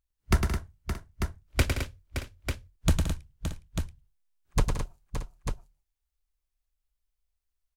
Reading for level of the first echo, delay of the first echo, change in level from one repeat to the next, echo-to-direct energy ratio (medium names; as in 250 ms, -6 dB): -5.5 dB, 105 ms, no regular repeats, -1.0 dB